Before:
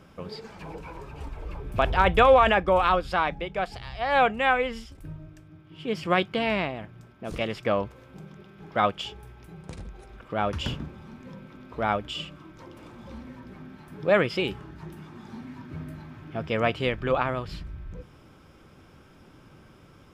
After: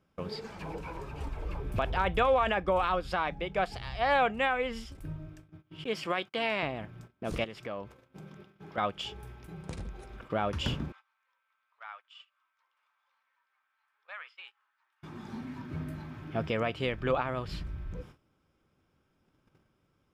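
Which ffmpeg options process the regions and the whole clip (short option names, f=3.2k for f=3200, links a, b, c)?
-filter_complex "[0:a]asettb=1/sr,asplit=3[a][b][c];[a]atrim=end=5.844[d];[b]atrim=start=5.84:end=6.63,asetpts=PTS-STARTPTS,afade=t=in:d=0.004:c=qsin,afade=t=out:st=0.786:d=0.004:c=qsin,highpass=f=520:p=1,agate=range=-30dB:threshold=-46dB:ratio=16:release=100:detection=peak[e];[c]atrim=start=6.626[f];[d][e]acrossfade=d=0.004:c1=hsin:c2=qsin[g];[g][f]acrossfade=d=0.004:c1=qsin:c2=hsin,asettb=1/sr,asplit=3[h][i][j];[h]atrim=end=7.444[k];[i]atrim=start=7.44:end=8.78,asetpts=PTS-STARTPTS,afade=t=in:d=0.004:c=qsin,afade=t=out:st=1.336:d=0.004:c=qsin,highpass=f=96:p=1,acompressor=threshold=-44dB:ratio=2:attack=3.2:release=140:knee=1:detection=peak[l];[j]atrim=start=8.776[m];[k][l]acrossfade=d=0.004:c1=hsin:c2=qsin[n];[n][m]acrossfade=d=0.004:c1=qsin:c2=hsin,asettb=1/sr,asplit=3[o][p][q];[o]atrim=end=10.924[r];[p]atrim=start=10.92:end=15.03,asetpts=PTS-STARTPTS,afade=t=in:d=0.004:c=qsin,afade=t=out:st=4.106:d=0.004:c=qsin,highpass=f=1.1k:w=0.5412,highpass=f=1.1k:w=1.3066,acompressor=threshold=-50dB:ratio=2:attack=3.2:release=140:knee=1:detection=peak,aemphasis=mode=reproduction:type=75fm[s];[q]atrim=start=15.026[t];[r][s]acrossfade=d=0.004:c1=hsin:c2=qsin[u];[u][t]acrossfade=d=0.004:c1=qsin:c2=hsin,agate=range=-20dB:threshold=-48dB:ratio=16:detection=peak,alimiter=limit=-17.5dB:level=0:latency=1:release=372"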